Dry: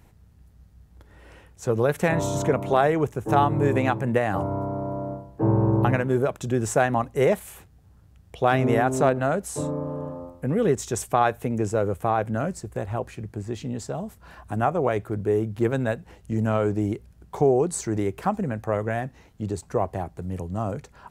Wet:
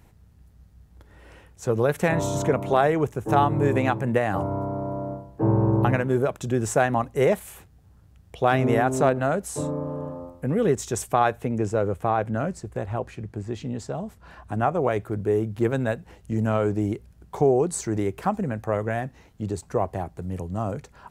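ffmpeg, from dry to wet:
-filter_complex "[0:a]asettb=1/sr,asplit=3[a][b][c];[a]atrim=end=11.314[d];[b]atrim=start=11.31:end=14.74,asetpts=PTS-STARTPTS,afade=t=in:d=0.004:c=qsin,afade=t=out:st=3.426:d=0.004:c=qsin,highshelf=f=9.4k:g=-11[e];[c]atrim=start=14.736[f];[d][e]acrossfade=d=0.004:c1=hsin:c2=qsin[g];[g][f]acrossfade=d=0.004:c1=qsin:c2=hsin"

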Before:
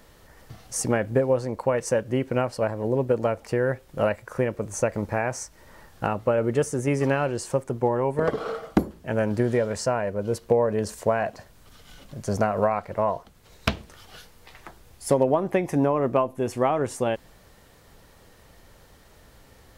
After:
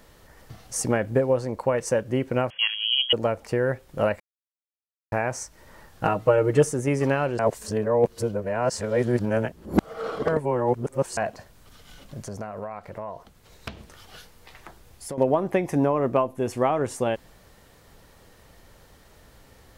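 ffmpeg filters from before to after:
-filter_complex "[0:a]asettb=1/sr,asplit=3[a][b][c];[a]atrim=end=2.504[d];[b]atrim=start=2.5:end=3.13,asetpts=PTS-STARTPTS,afade=t=in:d=0.004:c=qsin,afade=t=out:st=0.626:d=0.004:c=qsin,lowpass=f=2.9k:t=q:w=0.5098,lowpass=f=2.9k:t=q:w=0.6013,lowpass=f=2.9k:t=q:w=0.9,lowpass=f=2.9k:t=q:w=2.563,afreqshift=-3400[e];[c]atrim=start=3.126[f];[d][e]acrossfade=d=0.004:c1=hsin:c2=qsin[g];[g][f]acrossfade=d=0.004:c1=qsin:c2=hsin,asettb=1/sr,asplit=3[h][i][j];[h]atrim=end=6.044[k];[i]atrim=start=6.04:end=6.73,asetpts=PTS-STARTPTS,afade=t=in:d=0.004:c=qsin,afade=t=out:st=0.686:d=0.004:c=qsin,aecho=1:1:6.4:0.99,atrim=end_sample=30429[l];[j]atrim=start=6.726[m];[k][l]acrossfade=d=0.004:c1=hsin:c2=qsin[n];[n][m]acrossfade=d=0.004:c1=qsin:c2=hsin,asettb=1/sr,asplit=3[o][p][q];[o]atrim=end=12.234[r];[p]atrim=start=12.23:end=15.18,asetpts=PTS-STARTPTS,afade=t=in:d=0.004:c=qsin,afade=t=out:st=2.946:d=0.004:c=qsin,acompressor=threshold=-36dB:ratio=2.5:attack=3.2:release=140:knee=1:detection=peak[s];[q]atrim=start=15.176[t];[r][s]acrossfade=d=0.004:c1=hsin:c2=qsin[u];[u][t]acrossfade=d=0.004:c1=qsin:c2=hsin,asplit=5[v][w][x][y][z];[v]atrim=end=4.2,asetpts=PTS-STARTPTS,afade=t=out:st=4.196:d=0.004:c=hsin[aa];[w]atrim=start=4.2:end=5.12,asetpts=PTS-STARTPTS,volume=0[ab];[x]atrim=start=5.12:end=7.392,asetpts=PTS-STARTPTS,afade=t=in:d=0.004:c=hsin[ac];[y]atrim=start=7.388:end=11.172,asetpts=PTS-STARTPTS,areverse[ad];[z]atrim=start=11.168[ae];[aa][ab][ac]concat=n=3:v=0:a=1[af];[af][ad]acrossfade=d=0.004:c1=hsin:c2=hsin[ag];[ag][ae]acrossfade=d=0.004:c1=hsin:c2=hsin"

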